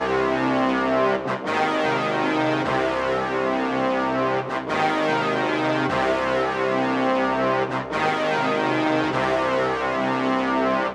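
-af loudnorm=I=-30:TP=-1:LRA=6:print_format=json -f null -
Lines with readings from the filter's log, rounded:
"input_i" : "-22.0",
"input_tp" : "-7.8",
"input_lra" : "0.6",
"input_thresh" : "-32.0",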